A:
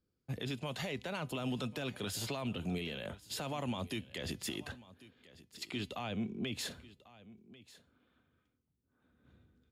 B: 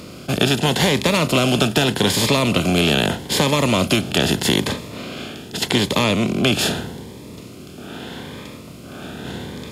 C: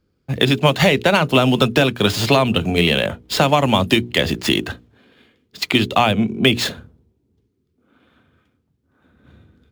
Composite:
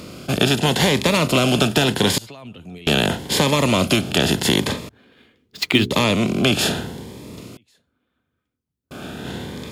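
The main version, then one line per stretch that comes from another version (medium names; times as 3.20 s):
B
2.18–2.87 s: from A
4.89–5.91 s: from C
7.57–8.91 s: from A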